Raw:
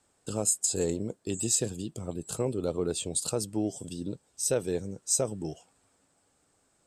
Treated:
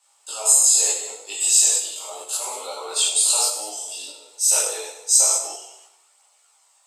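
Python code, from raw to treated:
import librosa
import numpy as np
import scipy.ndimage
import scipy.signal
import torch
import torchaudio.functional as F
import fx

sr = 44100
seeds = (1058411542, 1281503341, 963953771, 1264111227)

p1 = scipy.signal.sosfilt(scipy.signal.butter(4, 840.0, 'highpass', fs=sr, output='sos'), x)
p2 = fx.peak_eq(p1, sr, hz=1600.0, db=-12.5, octaves=0.36)
p3 = fx.rev_gated(p2, sr, seeds[0], gate_ms=280, shape='falling', drr_db=-6.0)
p4 = fx.level_steps(p3, sr, step_db=16)
p5 = p3 + (p4 * librosa.db_to_amplitude(2.5))
p6 = fx.chorus_voices(p5, sr, voices=2, hz=0.32, base_ms=18, depth_ms=3.0, mix_pct=50)
p7 = p6 + fx.echo_feedback(p6, sr, ms=96, feedback_pct=52, wet_db=-14.0, dry=0)
y = p7 * librosa.db_to_amplitude(7.0)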